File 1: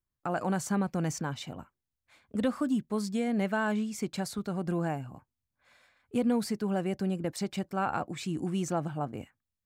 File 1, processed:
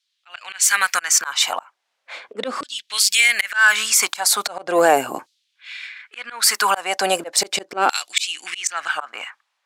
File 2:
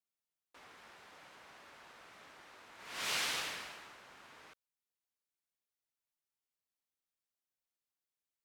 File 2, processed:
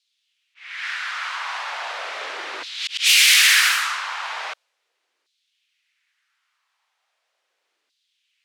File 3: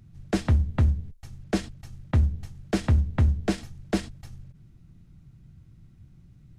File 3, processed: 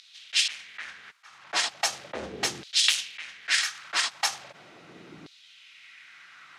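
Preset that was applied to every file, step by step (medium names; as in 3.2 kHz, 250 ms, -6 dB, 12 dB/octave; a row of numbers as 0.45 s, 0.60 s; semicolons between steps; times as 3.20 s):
LFO high-pass saw down 0.38 Hz 320–4100 Hz; in parallel at -6 dB: saturation -24.5 dBFS; on the sum: slow attack 322 ms; tilt EQ +3.5 dB/octave; level-controlled noise filter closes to 2.5 kHz, open at -33.5 dBFS; loudness maximiser +23.5 dB; trim -3.5 dB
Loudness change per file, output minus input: +14.0 LU, +19.5 LU, 0.0 LU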